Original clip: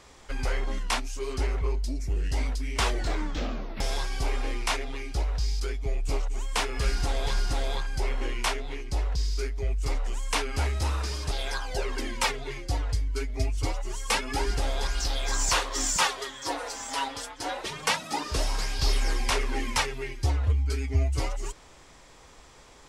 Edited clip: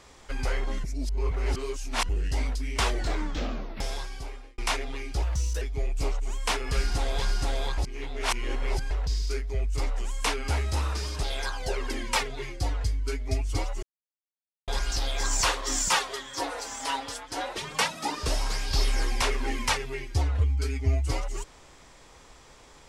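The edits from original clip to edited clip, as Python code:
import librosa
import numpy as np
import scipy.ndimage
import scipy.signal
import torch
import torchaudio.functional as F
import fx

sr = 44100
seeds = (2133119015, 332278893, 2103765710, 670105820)

y = fx.edit(x, sr, fx.reverse_span(start_s=0.84, length_s=1.25),
    fx.fade_out_span(start_s=3.58, length_s=1.0),
    fx.speed_span(start_s=5.22, length_s=0.48, speed=1.21),
    fx.reverse_span(start_s=7.86, length_s=1.13),
    fx.silence(start_s=13.91, length_s=0.85), tone=tone)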